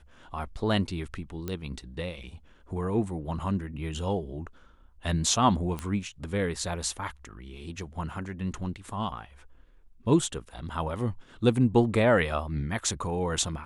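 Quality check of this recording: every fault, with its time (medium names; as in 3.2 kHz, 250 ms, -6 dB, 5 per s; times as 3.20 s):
1.48 s: pop -19 dBFS
5.79 s: pop -20 dBFS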